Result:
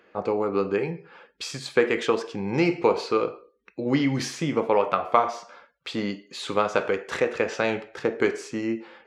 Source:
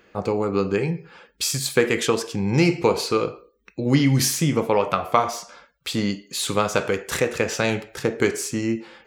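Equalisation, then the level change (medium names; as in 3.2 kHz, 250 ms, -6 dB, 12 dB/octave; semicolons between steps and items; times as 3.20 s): high-pass 95 Hz; tape spacing loss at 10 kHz 23 dB; peaking EQ 120 Hz -11.5 dB 2.1 oct; +2.0 dB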